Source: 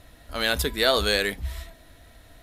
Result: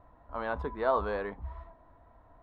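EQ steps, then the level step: synth low-pass 1000 Hz, resonance Q 4.9; -9.0 dB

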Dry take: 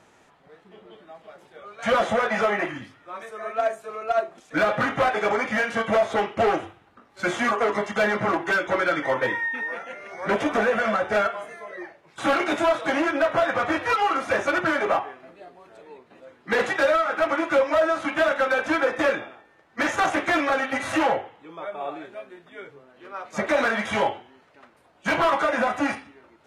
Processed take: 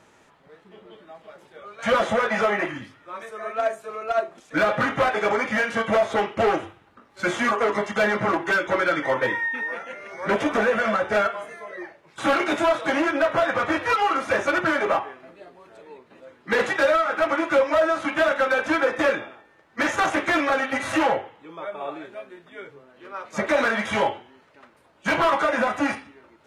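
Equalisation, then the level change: notch 730 Hz, Q 12; +1.0 dB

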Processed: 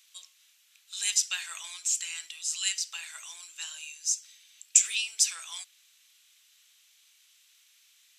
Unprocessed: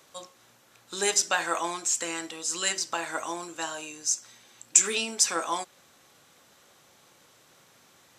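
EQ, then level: resonant high-pass 2700 Hz, resonance Q 1.9; high shelf 5000 Hz +7 dB; -7.0 dB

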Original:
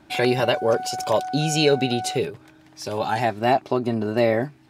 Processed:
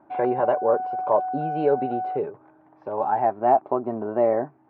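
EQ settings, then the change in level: HPF 520 Hz 6 dB/oct; ladder low-pass 1200 Hz, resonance 30%; +7.5 dB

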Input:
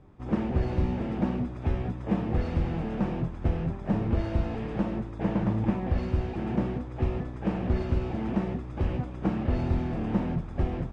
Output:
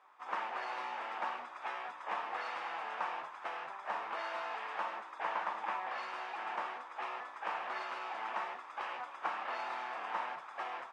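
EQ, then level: Chebyshev high-pass 1000 Hz, order 3; high shelf 2400 Hz -11 dB; +9.0 dB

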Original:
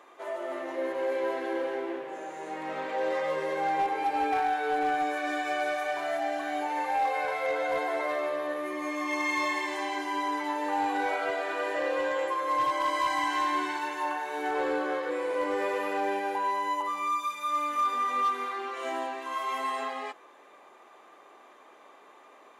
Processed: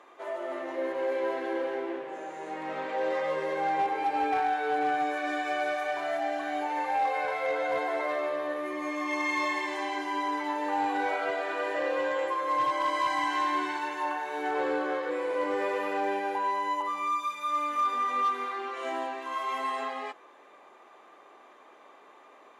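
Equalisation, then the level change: HPF 65 Hz; high shelf 8200 Hz -8.5 dB; 0.0 dB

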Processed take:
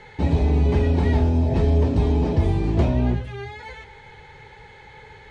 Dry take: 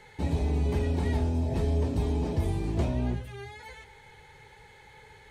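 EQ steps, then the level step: air absorption 110 m; +8.5 dB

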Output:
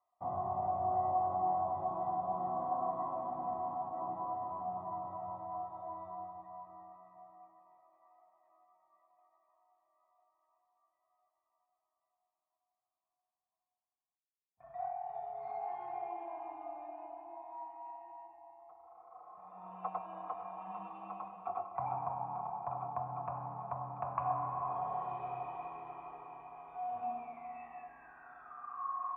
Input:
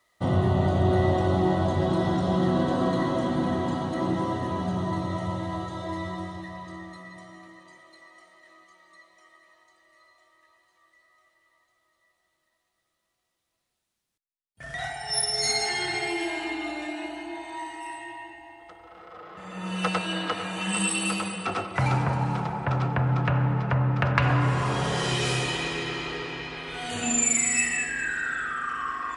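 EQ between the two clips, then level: vocal tract filter a; bell 500 Hz -5 dB 0.76 oct; +2.0 dB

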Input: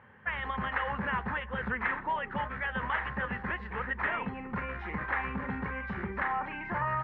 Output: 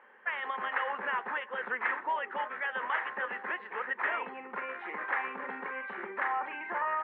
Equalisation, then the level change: HPF 340 Hz 24 dB/oct; LPF 3500 Hz 24 dB/oct; 0.0 dB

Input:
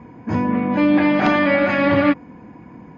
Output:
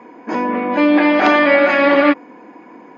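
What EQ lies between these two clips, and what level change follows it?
HPF 300 Hz 24 dB/oct; +5.5 dB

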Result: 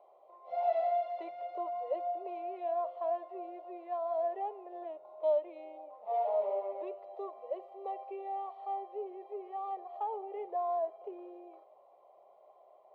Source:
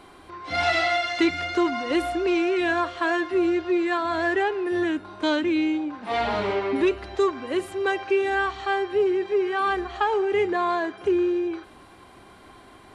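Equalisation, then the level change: ladder band-pass 650 Hz, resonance 70%; air absorption 59 m; fixed phaser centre 650 Hz, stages 4; 0.0 dB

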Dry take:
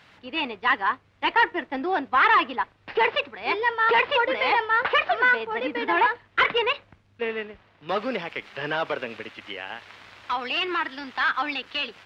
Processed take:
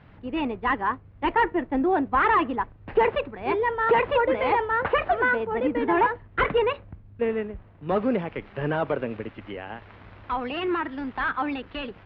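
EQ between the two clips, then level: air absorption 210 m; tilt -4 dB/oct; 0.0 dB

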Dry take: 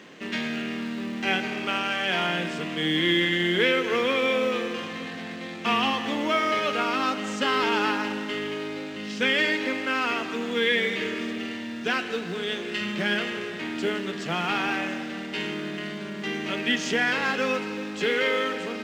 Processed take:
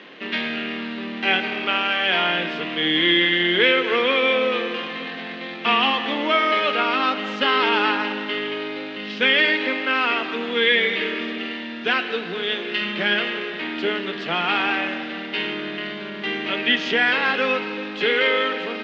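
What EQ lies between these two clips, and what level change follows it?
Bessel high-pass 290 Hz, order 2; synth low-pass 3700 Hz, resonance Q 1.6; air absorption 120 m; +5.0 dB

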